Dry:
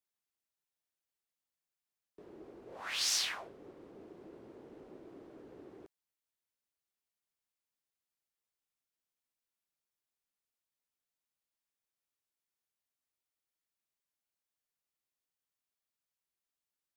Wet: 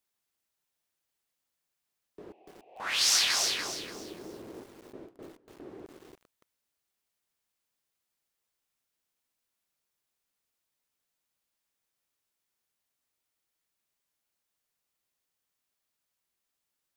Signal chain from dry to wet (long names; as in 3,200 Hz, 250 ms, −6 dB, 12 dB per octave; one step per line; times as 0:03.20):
0:02.32–0:02.80: pair of resonant band-passes 1,400 Hz, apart 1.8 octaves
0:04.63–0:05.74: noise gate with hold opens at −43 dBFS
feedback echo at a low word length 289 ms, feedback 35%, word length 10 bits, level −4 dB
level +7.5 dB